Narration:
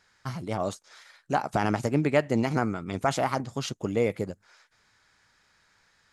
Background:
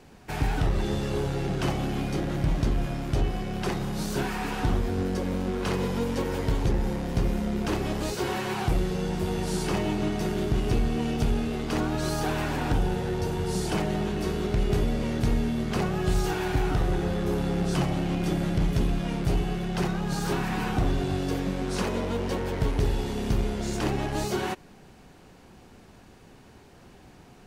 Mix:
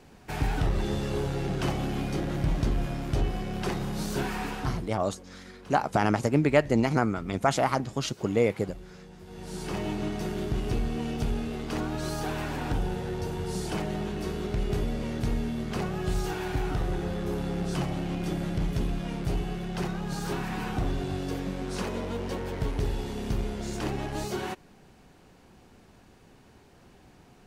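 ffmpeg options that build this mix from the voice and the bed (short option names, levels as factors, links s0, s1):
-filter_complex "[0:a]adelay=4400,volume=1.19[s0];[1:a]volume=5.01,afade=t=out:st=4.4:d=0.51:silence=0.125893,afade=t=in:st=9.26:d=0.6:silence=0.16788[s1];[s0][s1]amix=inputs=2:normalize=0"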